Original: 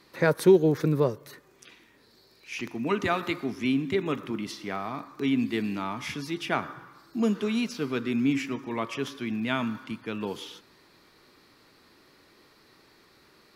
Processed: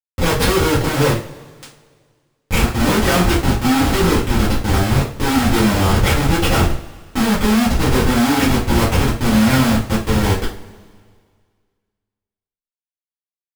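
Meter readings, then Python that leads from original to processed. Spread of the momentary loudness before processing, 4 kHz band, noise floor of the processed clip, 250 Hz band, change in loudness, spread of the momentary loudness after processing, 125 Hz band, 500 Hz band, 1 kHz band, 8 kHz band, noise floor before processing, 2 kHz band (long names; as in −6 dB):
12 LU, +16.0 dB, below −85 dBFS, +11.0 dB, +12.0 dB, 5 LU, +17.0 dB, +7.0 dB, +14.0 dB, +20.5 dB, −60 dBFS, +12.5 dB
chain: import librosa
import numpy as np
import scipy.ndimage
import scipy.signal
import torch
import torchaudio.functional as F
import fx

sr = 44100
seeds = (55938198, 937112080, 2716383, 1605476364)

y = fx.schmitt(x, sr, flips_db=-31.0)
y = fx.rev_double_slope(y, sr, seeds[0], early_s=0.34, late_s=1.9, knee_db=-22, drr_db=-9.5)
y = y * 10.0 ** (6.0 / 20.0)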